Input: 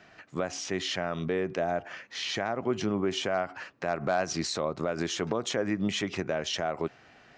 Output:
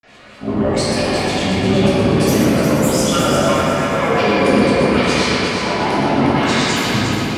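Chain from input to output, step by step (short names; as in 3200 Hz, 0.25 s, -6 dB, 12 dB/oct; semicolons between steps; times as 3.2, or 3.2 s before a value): whole clip reversed; in parallel at 0 dB: limiter -26 dBFS, peak gain reduction 10 dB; on the sum: bell 530 Hz -5.5 dB 0.39 oct; grains, pitch spread up and down by 12 st; on a send: multi-head echo 0.119 s, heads first and third, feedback 59%, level -7 dB; on the sum: shoebox room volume 150 m³, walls hard, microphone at 1.4 m; gain +1 dB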